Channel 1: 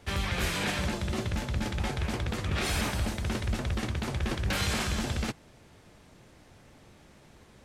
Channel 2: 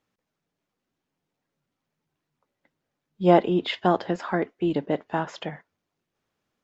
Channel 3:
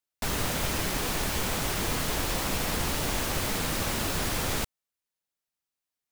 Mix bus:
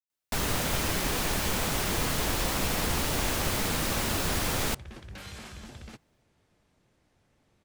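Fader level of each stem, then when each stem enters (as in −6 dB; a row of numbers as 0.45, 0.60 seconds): −14.0 dB, muted, +0.5 dB; 0.65 s, muted, 0.10 s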